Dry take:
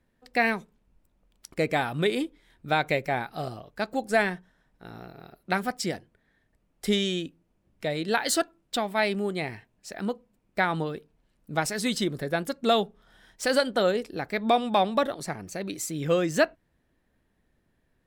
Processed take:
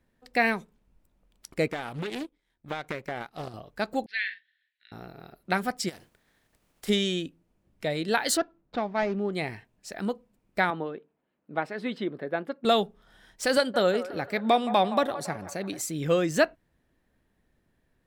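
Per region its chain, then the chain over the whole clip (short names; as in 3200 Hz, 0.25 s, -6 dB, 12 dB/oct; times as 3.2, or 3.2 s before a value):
1.68–3.54 compressor 10:1, threshold -25 dBFS + power-law curve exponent 1.4 + Doppler distortion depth 0.54 ms
4.06–4.92 elliptic band-pass 1800–4300 Hz + doubler 46 ms -10 dB
5.88–6.88 spectral contrast lowered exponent 0.59 + compressor 12:1, threshold -39 dBFS
8.37–9.33 median filter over 15 samples + air absorption 200 m
10.7–12.65 HPF 260 Hz + air absorption 450 m
13.57–15.81 HPF 67 Hz 24 dB/oct + band-limited delay 0.169 s, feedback 51%, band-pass 1000 Hz, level -12 dB
whole clip: dry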